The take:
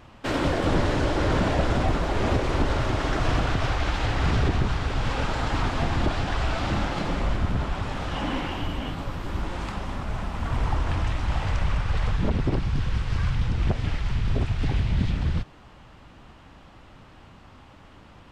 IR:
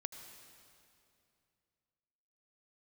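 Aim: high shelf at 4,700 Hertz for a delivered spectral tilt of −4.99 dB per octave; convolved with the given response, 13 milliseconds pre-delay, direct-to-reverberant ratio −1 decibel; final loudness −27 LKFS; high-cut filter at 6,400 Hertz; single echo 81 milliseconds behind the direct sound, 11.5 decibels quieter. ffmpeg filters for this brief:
-filter_complex "[0:a]lowpass=6400,highshelf=frequency=4700:gain=7.5,aecho=1:1:81:0.266,asplit=2[link_01][link_02];[1:a]atrim=start_sample=2205,adelay=13[link_03];[link_02][link_03]afir=irnorm=-1:irlink=0,volume=3.5dB[link_04];[link_01][link_04]amix=inputs=2:normalize=0,volume=-4.5dB"

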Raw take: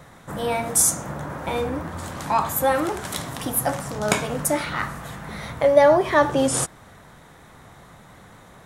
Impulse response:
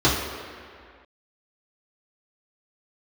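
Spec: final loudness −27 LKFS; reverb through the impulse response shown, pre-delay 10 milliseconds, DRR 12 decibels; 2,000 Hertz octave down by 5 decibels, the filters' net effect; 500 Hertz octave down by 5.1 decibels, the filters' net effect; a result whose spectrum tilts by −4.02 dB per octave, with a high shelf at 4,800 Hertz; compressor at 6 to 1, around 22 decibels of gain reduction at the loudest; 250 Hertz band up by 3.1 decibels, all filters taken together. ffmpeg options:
-filter_complex "[0:a]equalizer=frequency=250:width_type=o:gain=6,equalizer=frequency=500:width_type=o:gain=-7,equalizer=frequency=2000:width_type=o:gain=-7,highshelf=frequency=4800:gain=7.5,acompressor=threshold=-33dB:ratio=6,asplit=2[link_01][link_02];[1:a]atrim=start_sample=2205,adelay=10[link_03];[link_02][link_03]afir=irnorm=-1:irlink=0,volume=-31.5dB[link_04];[link_01][link_04]amix=inputs=2:normalize=0,volume=8dB"

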